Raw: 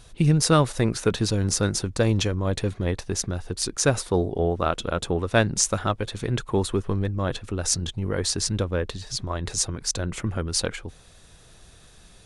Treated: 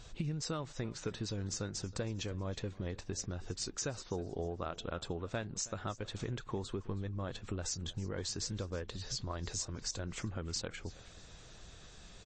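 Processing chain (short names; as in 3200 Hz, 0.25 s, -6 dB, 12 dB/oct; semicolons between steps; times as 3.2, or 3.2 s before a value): compressor 5:1, threshold -34 dBFS, peak gain reduction 18.5 dB; on a send: feedback echo 0.32 s, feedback 36%, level -20 dB; on the sum: gain -2.5 dB; MP3 32 kbps 22050 Hz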